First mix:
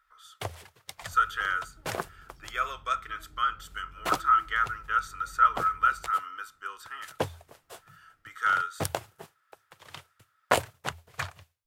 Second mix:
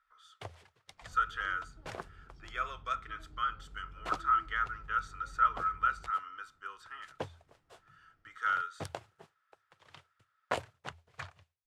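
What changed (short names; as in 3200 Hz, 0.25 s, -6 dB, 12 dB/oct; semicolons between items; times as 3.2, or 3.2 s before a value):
speech -5.5 dB; first sound -9.5 dB; master: add air absorption 66 m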